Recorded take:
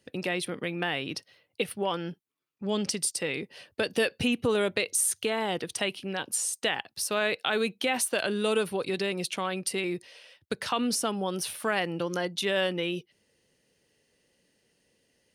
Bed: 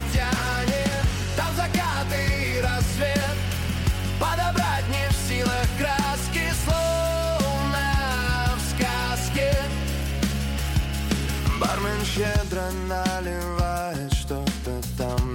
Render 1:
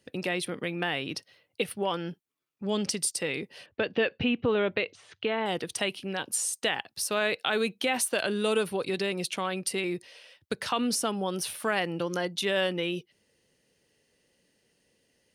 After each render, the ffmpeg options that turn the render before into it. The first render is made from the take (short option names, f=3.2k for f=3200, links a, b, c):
-filter_complex "[0:a]asettb=1/sr,asplit=3[a][b][c];[a]atrim=end=3.664[d];[b]atrim=start=3.66:end=5.46,asetpts=PTS-STARTPTS,afade=t=in:d=0.004:c=qsin,afade=t=out:st=1.796:d=0.004:c=qsin,lowpass=f=3.3k:w=0.5412,lowpass=f=3.3k:w=1.3066[e];[c]atrim=start=5.456[f];[d][e]acrossfade=d=0.004:c1=hsin:c2=qsin[g];[g][f]acrossfade=d=0.004:c1=qsin:c2=hsin"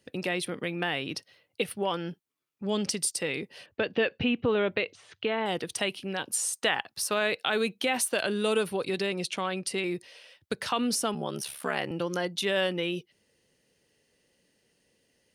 -filter_complex "[0:a]asettb=1/sr,asplit=3[a][b][c];[a]atrim=end=6.434[d];[b]atrim=start=6.43:end=7.14,asetpts=PTS-STARTPTS,afade=t=in:d=0.004:c=qsin,afade=t=out:st=0.706:d=0.004:c=qsin,equalizer=f=1.2k:w=0.97:g=5[e];[c]atrim=start=7.136[f];[d][e]acrossfade=d=0.004:c1=hsin:c2=qsin[g];[g][f]acrossfade=d=0.004:c1=qsin:c2=hsin,asettb=1/sr,asplit=3[h][i][j];[h]atrim=end=9.074[k];[i]atrim=start=9.07:end=9.84,asetpts=PTS-STARTPTS,afade=t=in:d=0.004:c=qsin,afade=t=out:st=0.766:d=0.004:c=qsin,lowpass=9.1k[l];[j]atrim=start=9.836[m];[k][l]acrossfade=d=0.004:c1=hsin:c2=qsin[n];[n][m]acrossfade=d=0.004:c1=qsin:c2=hsin,asettb=1/sr,asplit=3[o][p][q];[o]atrim=end=11.144[r];[p]atrim=start=11.14:end=11.91,asetpts=PTS-STARTPTS,afade=t=in:d=0.004:c=qsin,afade=t=out:st=0.766:d=0.004:c=qsin,aeval=exprs='val(0)*sin(2*PI*35*n/s)':c=same[s];[q]atrim=start=11.906[t];[r][s]acrossfade=d=0.004:c1=hsin:c2=qsin[u];[u][t]acrossfade=d=0.004:c1=qsin:c2=hsin"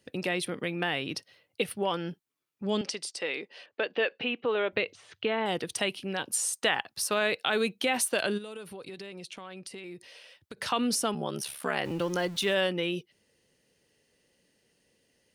-filter_complex "[0:a]asettb=1/sr,asplit=3[a][b][c];[a]atrim=end=2.814[d];[b]atrim=start=2.81:end=4.73,asetpts=PTS-STARTPTS,afade=t=in:d=0.004:c=qsin,afade=t=out:st=1.916:d=0.004:c=qsin,highpass=400,lowpass=5.1k[e];[c]atrim=start=4.726[f];[d][e]acrossfade=d=0.004:c1=hsin:c2=qsin[g];[g][f]acrossfade=d=0.004:c1=qsin:c2=hsin,asplit=3[h][i][j];[h]afade=t=out:st=8.37:d=0.02[k];[i]acompressor=threshold=-41dB:ratio=4:attack=3.2:release=140:knee=1:detection=peak,afade=t=in:st=8.37:d=0.02,afade=t=out:st=10.56:d=0.02[l];[j]afade=t=in:st=10.56:d=0.02[m];[k][l][m]amix=inputs=3:normalize=0,asettb=1/sr,asplit=3[n][o][p];[n]atrim=end=11.854[q];[o]atrim=start=11.85:end=12.55,asetpts=PTS-STARTPTS,afade=t=in:d=0.004:c=qsin,afade=t=out:st=0.696:d=0.004:c=qsin,aeval=exprs='val(0)+0.5*0.00841*sgn(val(0))':c=same[r];[p]atrim=start=12.546[s];[q][r]acrossfade=d=0.004:c1=hsin:c2=qsin[t];[t][s]acrossfade=d=0.004:c1=qsin:c2=hsin"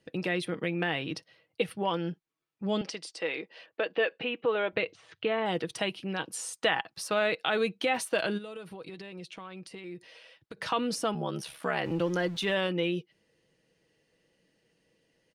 -af "aemphasis=mode=reproduction:type=50kf,aecho=1:1:6.2:0.38"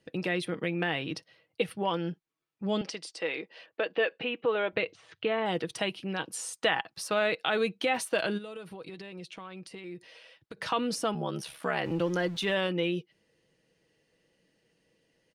-af anull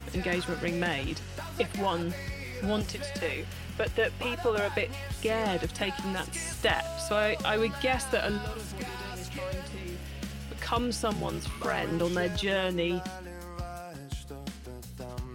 -filter_complex "[1:a]volume=-14dB[a];[0:a][a]amix=inputs=2:normalize=0"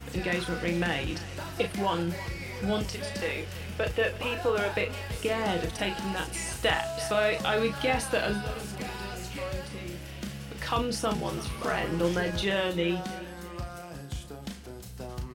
-filter_complex "[0:a]asplit=2[a][b];[b]adelay=35,volume=-7dB[c];[a][c]amix=inputs=2:normalize=0,aecho=1:1:330|660|990|1320|1650:0.15|0.0808|0.0436|0.0236|0.0127"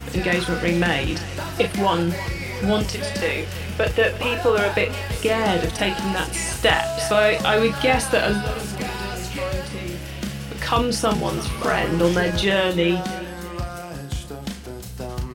-af "volume=8.5dB"